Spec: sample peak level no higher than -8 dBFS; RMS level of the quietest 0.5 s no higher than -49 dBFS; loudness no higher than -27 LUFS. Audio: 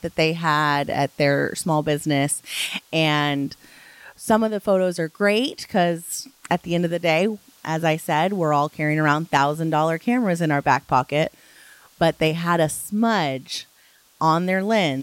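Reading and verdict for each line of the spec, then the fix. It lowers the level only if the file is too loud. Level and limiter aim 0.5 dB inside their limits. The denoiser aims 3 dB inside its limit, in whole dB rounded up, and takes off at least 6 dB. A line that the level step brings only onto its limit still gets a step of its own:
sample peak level -4.0 dBFS: fail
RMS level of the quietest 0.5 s -56 dBFS: pass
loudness -21.5 LUFS: fail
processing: trim -6 dB

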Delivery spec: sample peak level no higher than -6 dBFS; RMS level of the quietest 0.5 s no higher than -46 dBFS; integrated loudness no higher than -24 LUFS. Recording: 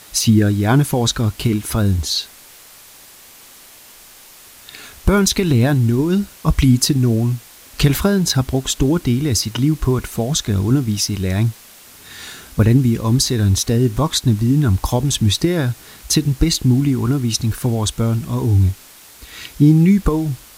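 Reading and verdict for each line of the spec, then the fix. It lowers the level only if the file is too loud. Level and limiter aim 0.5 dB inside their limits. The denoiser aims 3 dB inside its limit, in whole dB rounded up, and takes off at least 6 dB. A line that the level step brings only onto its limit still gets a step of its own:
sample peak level -2.0 dBFS: fail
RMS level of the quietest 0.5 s -43 dBFS: fail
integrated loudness -17.0 LUFS: fail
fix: trim -7.5 dB

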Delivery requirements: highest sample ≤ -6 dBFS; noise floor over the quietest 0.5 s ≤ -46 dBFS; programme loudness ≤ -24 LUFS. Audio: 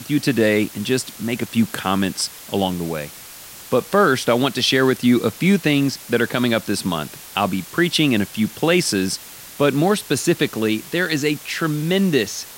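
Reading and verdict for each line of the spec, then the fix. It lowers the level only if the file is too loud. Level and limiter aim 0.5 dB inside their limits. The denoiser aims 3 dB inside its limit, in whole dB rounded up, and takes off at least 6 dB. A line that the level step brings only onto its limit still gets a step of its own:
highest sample -4.5 dBFS: fail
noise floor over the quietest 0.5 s -39 dBFS: fail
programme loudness -19.5 LUFS: fail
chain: noise reduction 6 dB, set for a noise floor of -39 dBFS; trim -5 dB

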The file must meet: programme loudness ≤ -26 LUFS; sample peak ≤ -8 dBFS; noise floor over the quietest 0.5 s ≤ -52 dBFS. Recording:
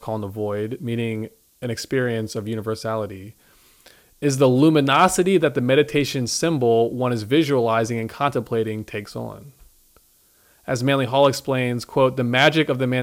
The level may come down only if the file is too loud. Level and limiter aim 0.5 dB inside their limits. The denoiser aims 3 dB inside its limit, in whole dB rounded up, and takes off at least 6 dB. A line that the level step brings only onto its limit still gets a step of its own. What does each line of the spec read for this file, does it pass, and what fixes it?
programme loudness -20.5 LUFS: fail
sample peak -4.5 dBFS: fail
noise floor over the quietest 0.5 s -58 dBFS: pass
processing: trim -6 dB

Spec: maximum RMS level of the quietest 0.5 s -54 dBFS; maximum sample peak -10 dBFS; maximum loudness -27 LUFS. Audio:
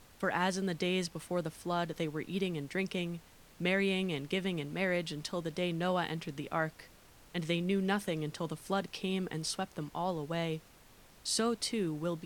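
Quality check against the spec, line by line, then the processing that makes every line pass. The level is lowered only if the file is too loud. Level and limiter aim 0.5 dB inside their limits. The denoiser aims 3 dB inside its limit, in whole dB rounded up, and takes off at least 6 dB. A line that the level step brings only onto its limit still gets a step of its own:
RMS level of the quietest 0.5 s -59 dBFS: pass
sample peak -17.0 dBFS: pass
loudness -35.0 LUFS: pass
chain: none needed

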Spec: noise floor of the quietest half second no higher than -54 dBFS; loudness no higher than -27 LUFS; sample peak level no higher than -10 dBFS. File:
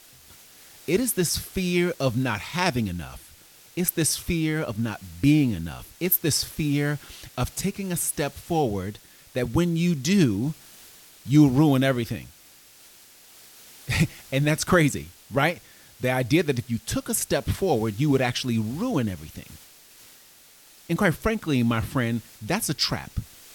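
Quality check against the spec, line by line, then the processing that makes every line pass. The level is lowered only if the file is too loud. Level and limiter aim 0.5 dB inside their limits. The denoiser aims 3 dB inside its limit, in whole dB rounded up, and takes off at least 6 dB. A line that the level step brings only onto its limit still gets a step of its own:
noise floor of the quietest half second -52 dBFS: fail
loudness -24.5 LUFS: fail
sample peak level -6.0 dBFS: fail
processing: trim -3 dB; peak limiter -10.5 dBFS

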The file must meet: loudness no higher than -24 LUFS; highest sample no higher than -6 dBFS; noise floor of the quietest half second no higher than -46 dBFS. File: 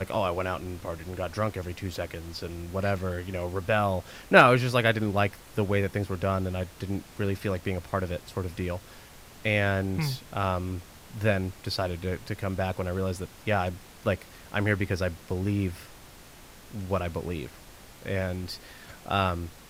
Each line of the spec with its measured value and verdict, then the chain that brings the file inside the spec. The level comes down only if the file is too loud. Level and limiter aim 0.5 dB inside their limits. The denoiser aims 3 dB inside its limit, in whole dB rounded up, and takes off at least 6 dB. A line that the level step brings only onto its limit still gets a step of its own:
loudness -29.0 LUFS: pass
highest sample -3.5 dBFS: fail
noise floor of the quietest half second -49 dBFS: pass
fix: peak limiter -6.5 dBFS

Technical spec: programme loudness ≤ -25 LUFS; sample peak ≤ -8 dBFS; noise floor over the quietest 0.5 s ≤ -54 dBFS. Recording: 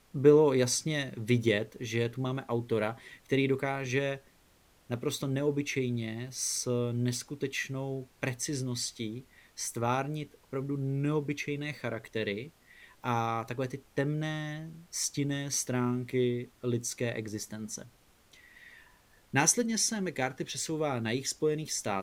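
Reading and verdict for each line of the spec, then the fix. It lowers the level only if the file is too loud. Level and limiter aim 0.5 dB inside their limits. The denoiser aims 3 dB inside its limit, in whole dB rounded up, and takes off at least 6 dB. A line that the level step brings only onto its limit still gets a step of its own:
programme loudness -31.5 LUFS: pass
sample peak -9.5 dBFS: pass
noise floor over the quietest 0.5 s -64 dBFS: pass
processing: none needed

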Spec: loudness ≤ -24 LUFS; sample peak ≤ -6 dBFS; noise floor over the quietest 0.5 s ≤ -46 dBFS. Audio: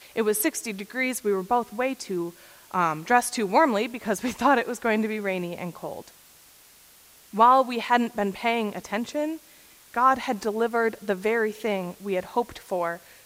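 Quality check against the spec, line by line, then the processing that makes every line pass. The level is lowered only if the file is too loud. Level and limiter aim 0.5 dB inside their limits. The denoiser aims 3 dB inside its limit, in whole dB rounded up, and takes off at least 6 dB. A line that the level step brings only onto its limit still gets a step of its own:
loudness -25.0 LUFS: pass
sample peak -5.0 dBFS: fail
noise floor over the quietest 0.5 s -53 dBFS: pass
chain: peak limiter -6.5 dBFS

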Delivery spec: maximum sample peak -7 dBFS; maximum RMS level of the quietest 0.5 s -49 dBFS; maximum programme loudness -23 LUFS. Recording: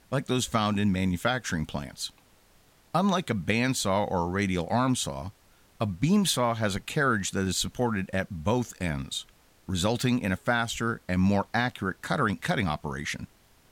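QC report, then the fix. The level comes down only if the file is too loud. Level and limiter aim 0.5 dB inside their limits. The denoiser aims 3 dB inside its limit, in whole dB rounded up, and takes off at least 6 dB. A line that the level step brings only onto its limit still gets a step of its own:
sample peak -13.0 dBFS: pass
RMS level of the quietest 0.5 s -60 dBFS: pass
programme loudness -28.0 LUFS: pass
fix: none needed

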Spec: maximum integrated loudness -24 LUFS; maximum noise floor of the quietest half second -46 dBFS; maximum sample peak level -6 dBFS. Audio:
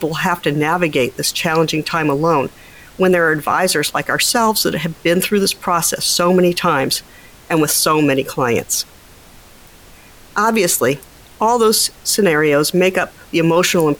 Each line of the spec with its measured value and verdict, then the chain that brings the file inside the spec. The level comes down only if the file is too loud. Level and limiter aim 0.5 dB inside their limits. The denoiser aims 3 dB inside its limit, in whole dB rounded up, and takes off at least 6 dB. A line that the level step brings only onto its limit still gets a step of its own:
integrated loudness -15.5 LUFS: fail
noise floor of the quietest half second -43 dBFS: fail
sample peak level -4.0 dBFS: fail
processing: trim -9 dB

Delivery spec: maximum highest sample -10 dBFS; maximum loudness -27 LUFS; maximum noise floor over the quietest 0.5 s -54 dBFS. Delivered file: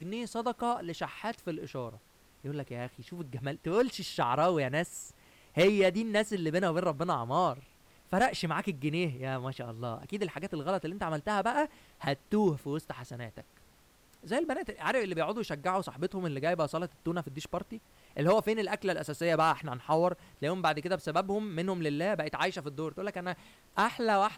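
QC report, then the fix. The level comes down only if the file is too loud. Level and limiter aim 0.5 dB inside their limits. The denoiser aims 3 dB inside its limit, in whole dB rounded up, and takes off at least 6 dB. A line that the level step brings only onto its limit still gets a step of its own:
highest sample -17.0 dBFS: pass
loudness -32.0 LUFS: pass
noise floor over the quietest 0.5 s -62 dBFS: pass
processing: none needed

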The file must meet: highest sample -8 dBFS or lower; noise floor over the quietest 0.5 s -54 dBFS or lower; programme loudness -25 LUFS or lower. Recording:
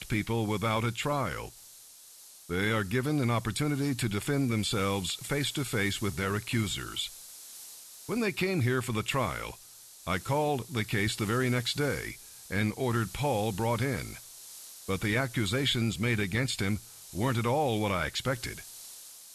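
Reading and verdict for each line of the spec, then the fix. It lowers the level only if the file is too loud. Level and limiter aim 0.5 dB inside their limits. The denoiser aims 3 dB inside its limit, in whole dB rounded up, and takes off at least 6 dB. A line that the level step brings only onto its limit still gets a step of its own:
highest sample -16.0 dBFS: pass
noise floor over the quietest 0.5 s -52 dBFS: fail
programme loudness -30.5 LUFS: pass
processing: noise reduction 6 dB, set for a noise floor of -52 dBFS

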